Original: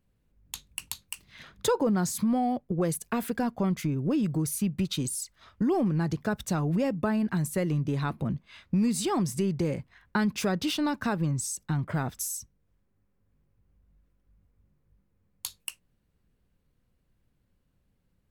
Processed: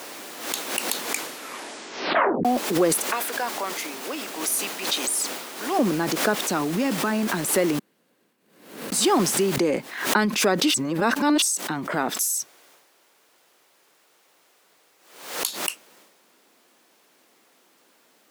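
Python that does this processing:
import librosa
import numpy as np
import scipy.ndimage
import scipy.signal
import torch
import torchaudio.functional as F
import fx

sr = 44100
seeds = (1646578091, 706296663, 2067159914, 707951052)

y = fx.highpass(x, sr, hz=820.0, slope=12, at=(3.12, 5.79))
y = fx.peak_eq(y, sr, hz=570.0, db=fx.line((6.49, -3.0), (7.11, -14.5)), octaves=0.79, at=(6.49, 7.11), fade=0.02)
y = fx.noise_floor_step(y, sr, seeds[0], at_s=9.56, before_db=-45, after_db=-67, tilt_db=3.0)
y = fx.peak_eq(y, sr, hz=230.0, db=-10.5, octaves=0.77, at=(12.17, 15.46))
y = fx.edit(y, sr, fx.tape_stop(start_s=0.9, length_s=1.55),
    fx.room_tone_fill(start_s=7.79, length_s=1.13),
    fx.reverse_span(start_s=10.74, length_s=0.68), tone=tone)
y = scipy.signal.sosfilt(scipy.signal.butter(4, 260.0, 'highpass', fs=sr, output='sos'), y)
y = fx.transient(y, sr, attack_db=0, sustain_db=7)
y = fx.pre_swell(y, sr, db_per_s=81.0)
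y = F.gain(torch.from_numpy(y), 8.5).numpy()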